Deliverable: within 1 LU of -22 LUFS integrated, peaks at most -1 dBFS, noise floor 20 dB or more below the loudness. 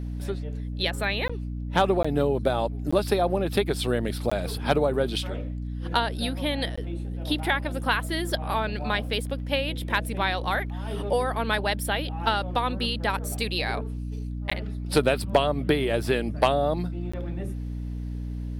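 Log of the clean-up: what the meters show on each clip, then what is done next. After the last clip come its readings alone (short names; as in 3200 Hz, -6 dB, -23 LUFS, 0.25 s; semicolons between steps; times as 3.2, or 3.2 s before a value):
dropouts 7; longest dropout 15 ms; hum 60 Hz; harmonics up to 300 Hz; hum level -29 dBFS; loudness -27.0 LUFS; peak -8.0 dBFS; loudness target -22.0 LUFS
-> interpolate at 1.28/2.03/2.91/4.3/6.76/14.5/17.12, 15 ms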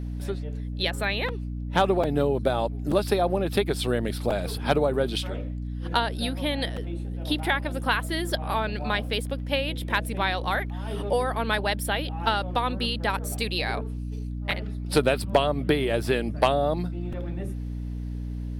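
dropouts 0; hum 60 Hz; harmonics up to 300 Hz; hum level -29 dBFS
-> notches 60/120/180/240/300 Hz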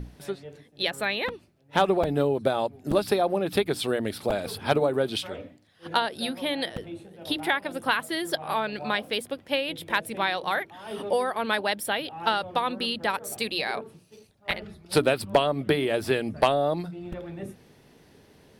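hum none; loudness -27.0 LUFS; peak -9.0 dBFS; loudness target -22.0 LUFS
-> gain +5 dB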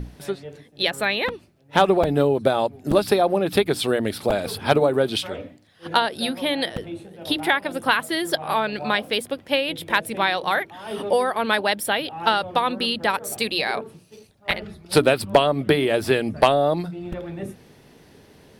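loudness -22.0 LUFS; peak -4.0 dBFS; noise floor -53 dBFS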